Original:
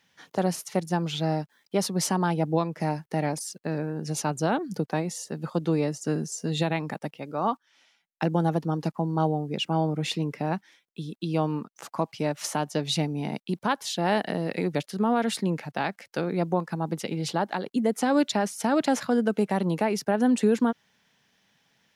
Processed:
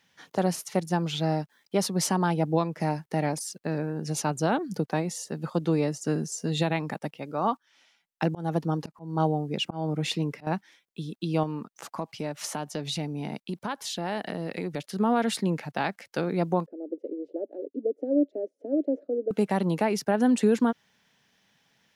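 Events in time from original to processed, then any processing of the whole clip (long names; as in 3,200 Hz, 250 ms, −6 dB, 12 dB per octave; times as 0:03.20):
0:08.23–0:10.47: volume swells 218 ms
0:11.43–0:14.93: downward compressor 2 to 1, threshold −31 dBFS
0:16.66–0:19.31: elliptic band-pass filter 280–580 Hz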